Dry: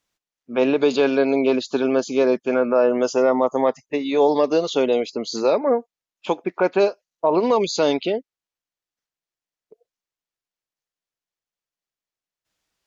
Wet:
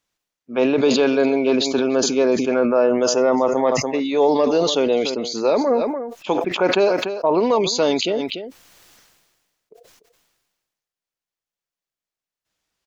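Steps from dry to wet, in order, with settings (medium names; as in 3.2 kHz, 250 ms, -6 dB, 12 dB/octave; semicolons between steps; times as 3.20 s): delay 293 ms -17.5 dB; decay stretcher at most 39 dB/s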